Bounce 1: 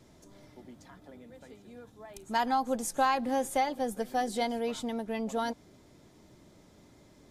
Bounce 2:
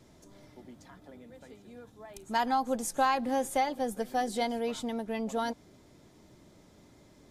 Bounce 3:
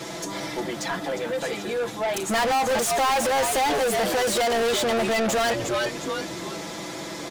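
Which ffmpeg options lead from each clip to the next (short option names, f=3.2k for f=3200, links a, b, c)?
-af anull
-filter_complex "[0:a]aecho=1:1:6:0.96,asplit=4[a][b][c][d];[b]adelay=356,afreqshift=-100,volume=-13dB[e];[c]adelay=712,afreqshift=-200,volume=-22.1dB[f];[d]adelay=1068,afreqshift=-300,volume=-31.2dB[g];[a][e][f][g]amix=inputs=4:normalize=0,asplit=2[h][i];[i]highpass=f=720:p=1,volume=38dB,asoftclip=type=tanh:threshold=-12.5dB[j];[h][j]amix=inputs=2:normalize=0,lowpass=f=6.5k:p=1,volume=-6dB,volume=-3.5dB"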